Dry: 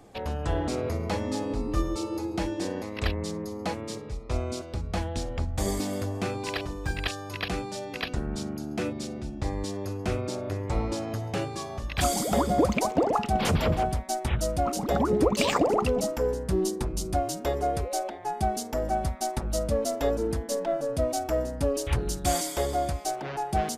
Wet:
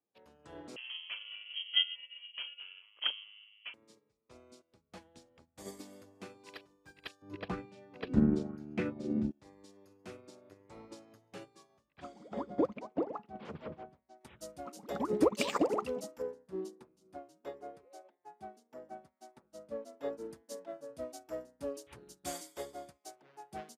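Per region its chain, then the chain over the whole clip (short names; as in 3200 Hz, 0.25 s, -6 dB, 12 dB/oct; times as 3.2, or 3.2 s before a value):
0.76–3.74 inverted band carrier 3200 Hz + HPF 750 Hz 6 dB/oct
7.22–9.31 RIAA curve playback + LFO bell 1 Hz 220–2600 Hz +11 dB
11.89–14.21 tape spacing loss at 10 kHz 30 dB + notches 60/120/180/240/300 Hz
16.22–20.18 HPF 140 Hz 6 dB/oct + high shelf 3600 Hz -11.5 dB
whole clip: HPF 190 Hz 12 dB/oct; bell 720 Hz -5 dB 0.3 oct; upward expander 2.5:1, over -44 dBFS; gain -1.5 dB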